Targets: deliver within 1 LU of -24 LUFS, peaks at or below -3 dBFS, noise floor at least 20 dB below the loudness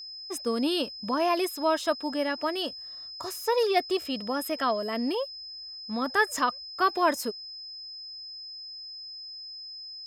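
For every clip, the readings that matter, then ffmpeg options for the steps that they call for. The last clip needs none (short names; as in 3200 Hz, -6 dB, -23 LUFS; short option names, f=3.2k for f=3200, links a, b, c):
steady tone 5100 Hz; tone level -39 dBFS; loudness -29.5 LUFS; peak -11.0 dBFS; loudness target -24.0 LUFS
-> -af "bandreject=f=5.1k:w=30"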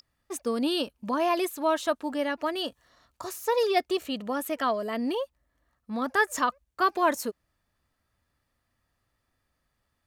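steady tone none; loudness -28.5 LUFS; peak -11.0 dBFS; loudness target -24.0 LUFS
-> -af "volume=4.5dB"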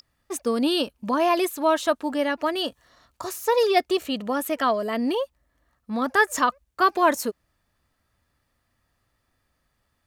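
loudness -24.0 LUFS; peak -6.5 dBFS; noise floor -73 dBFS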